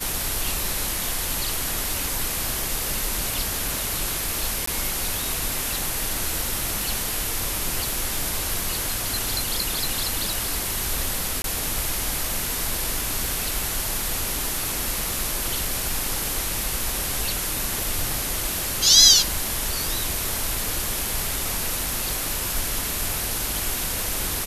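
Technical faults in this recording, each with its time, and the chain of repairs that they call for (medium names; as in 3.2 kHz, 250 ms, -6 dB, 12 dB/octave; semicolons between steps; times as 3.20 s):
4.66–4.67 s: dropout 14 ms
11.42–11.44 s: dropout 22 ms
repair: interpolate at 4.66 s, 14 ms; interpolate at 11.42 s, 22 ms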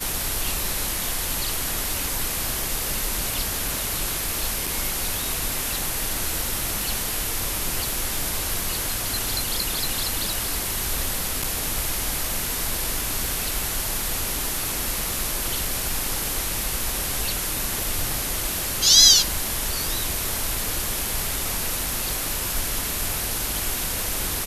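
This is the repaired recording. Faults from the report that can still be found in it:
nothing left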